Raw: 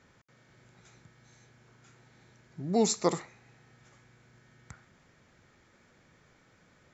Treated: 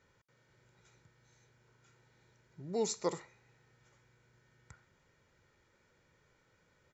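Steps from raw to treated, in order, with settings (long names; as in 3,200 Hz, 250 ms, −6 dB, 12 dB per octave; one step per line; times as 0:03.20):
comb filter 2.1 ms, depth 41%
level −8.5 dB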